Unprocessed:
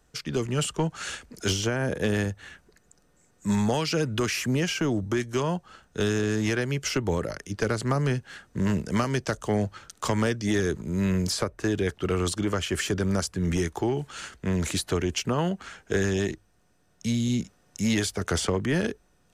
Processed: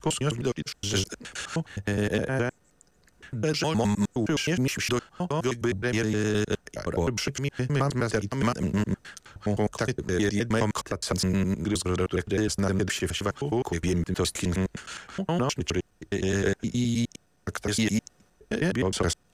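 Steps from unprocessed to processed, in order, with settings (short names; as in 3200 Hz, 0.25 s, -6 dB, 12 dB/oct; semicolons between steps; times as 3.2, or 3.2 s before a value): slices in reverse order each 0.104 s, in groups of 8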